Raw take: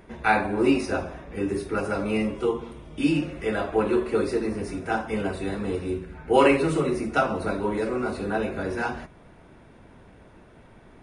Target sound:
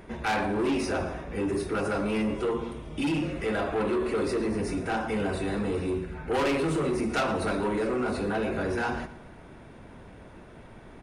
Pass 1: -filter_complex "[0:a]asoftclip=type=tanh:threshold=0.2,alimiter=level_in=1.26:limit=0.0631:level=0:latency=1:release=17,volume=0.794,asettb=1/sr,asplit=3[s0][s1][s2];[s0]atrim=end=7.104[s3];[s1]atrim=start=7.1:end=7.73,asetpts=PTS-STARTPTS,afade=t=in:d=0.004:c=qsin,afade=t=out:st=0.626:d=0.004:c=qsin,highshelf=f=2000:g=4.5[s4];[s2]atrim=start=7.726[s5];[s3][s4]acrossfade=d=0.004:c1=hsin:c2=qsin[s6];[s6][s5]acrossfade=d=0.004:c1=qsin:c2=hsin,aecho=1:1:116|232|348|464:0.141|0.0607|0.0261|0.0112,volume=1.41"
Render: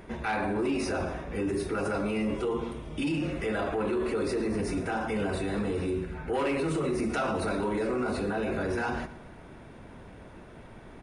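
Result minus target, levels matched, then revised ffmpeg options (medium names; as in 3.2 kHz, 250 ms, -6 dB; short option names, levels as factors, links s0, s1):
saturation: distortion -8 dB
-filter_complex "[0:a]asoftclip=type=tanh:threshold=0.0708,alimiter=level_in=1.26:limit=0.0631:level=0:latency=1:release=17,volume=0.794,asettb=1/sr,asplit=3[s0][s1][s2];[s0]atrim=end=7.104[s3];[s1]atrim=start=7.1:end=7.73,asetpts=PTS-STARTPTS,afade=t=in:d=0.004:c=qsin,afade=t=out:st=0.626:d=0.004:c=qsin,highshelf=f=2000:g=4.5[s4];[s2]atrim=start=7.726[s5];[s3][s4]acrossfade=d=0.004:c1=hsin:c2=qsin[s6];[s6][s5]acrossfade=d=0.004:c1=qsin:c2=hsin,aecho=1:1:116|232|348|464:0.141|0.0607|0.0261|0.0112,volume=1.41"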